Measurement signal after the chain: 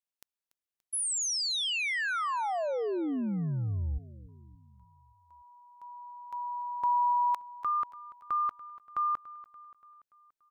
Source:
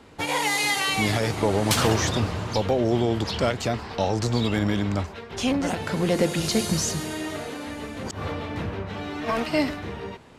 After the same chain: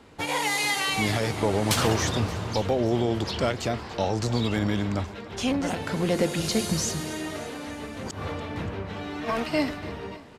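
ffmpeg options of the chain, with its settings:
ffmpeg -i in.wav -af "aecho=1:1:288|576|864|1152|1440:0.126|0.0718|0.0409|0.0233|0.0133,volume=-2dB" out.wav

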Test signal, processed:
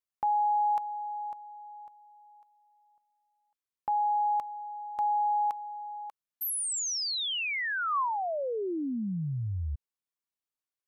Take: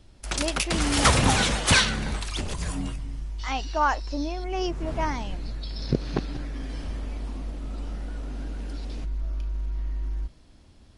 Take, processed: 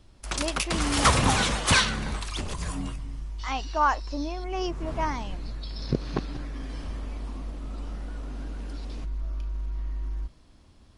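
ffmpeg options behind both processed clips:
ffmpeg -i in.wav -af "equalizer=frequency=1100:width_type=o:width=0.38:gain=5,volume=-2dB" out.wav

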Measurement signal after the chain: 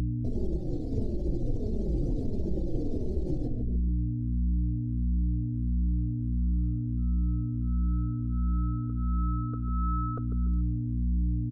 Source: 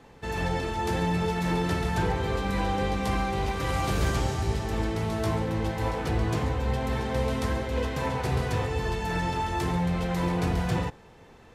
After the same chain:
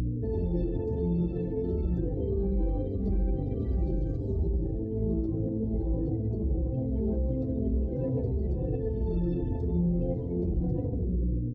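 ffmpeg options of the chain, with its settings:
ffmpeg -i in.wav -filter_complex "[0:a]firequalizer=gain_entry='entry(110,0);entry(330,12);entry(1000,-18);entry(2900,-11);entry(4400,-5)':delay=0.05:min_phase=1,asplit=2[link_01][link_02];[link_02]adelay=145,lowpass=frequency=4500:poles=1,volume=-7.5dB,asplit=2[link_03][link_04];[link_04]adelay=145,lowpass=frequency=4500:poles=1,volume=0.46,asplit=2[link_05][link_06];[link_06]adelay=145,lowpass=frequency=4500:poles=1,volume=0.46,asplit=2[link_07][link_08];[link_08]adelay=145,lowpass=frequency=4500:poles=1,volume=0.46,asplit=2[link_09][link_10];[link_10]adelay=145,lowpass=frequency=4500:poles=1,volume=0.46[link_11];[link_03][link_05][link_07][link_09][link_11]amix=inputs=5:normalize=0[link_12];[link_01][link_12]amix=inputs=2:normalize=0,afftdn=noise_reduction=16:noise_floor=-42,aemphasis=mode=reproduction:type=bsi,aeval=exprs='val(0)+0.0447*(sin(2*PI*60*n/s)+sin(2*PI*2*60*n/s)/2+sin(2*PI*3*60*n/s)/3+sin(2*PI*4*60*n/s)/4+sin(2*PI*5*60*n/s)/5)':channel_layout=same,acompressor=threshold=-20dB:ratio=16,alimiter=limit=-23.5dB:level=0:latency=1:release=62,acontrast=82,asplit=2[link_13][link_14];[link_14]adelay=3.4,afreqshift=-1.5[link_15];[link_13][link_15]amix=inputs=2:normalize=1,volume=-2.5dB" out.wav

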